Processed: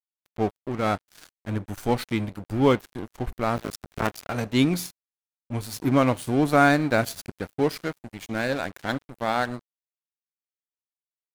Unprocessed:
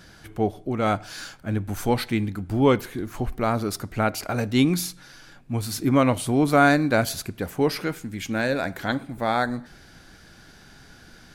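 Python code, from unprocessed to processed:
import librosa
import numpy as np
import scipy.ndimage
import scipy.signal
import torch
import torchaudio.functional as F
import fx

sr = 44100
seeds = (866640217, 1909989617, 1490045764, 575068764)

y = fx.cycle_switch(x, sr, every=2, mode='muted', at=(3.56, 4.21), fade=0.02)
y = np.sign(y) * np.maximum(np.abs(y) - 10.0 ** (-33.0 / 20.0), 0.0)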